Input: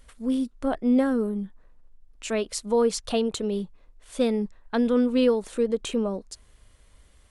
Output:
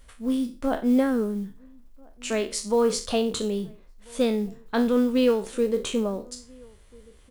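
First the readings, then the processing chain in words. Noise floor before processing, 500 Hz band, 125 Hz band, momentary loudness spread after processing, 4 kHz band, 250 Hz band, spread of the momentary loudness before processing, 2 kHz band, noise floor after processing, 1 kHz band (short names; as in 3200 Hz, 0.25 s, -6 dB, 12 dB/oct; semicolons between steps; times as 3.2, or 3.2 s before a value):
-57 dBFS, +0.5 dB, n/a, 14 LU, +2.0 dB, 0.0 dB, 15 LU, +2.0 dB, -53 dBFS, +1.0 dB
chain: spectral trails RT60 0.33 s; modulation noise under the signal 31 dB; outdoor echo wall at 230 m, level -27 dB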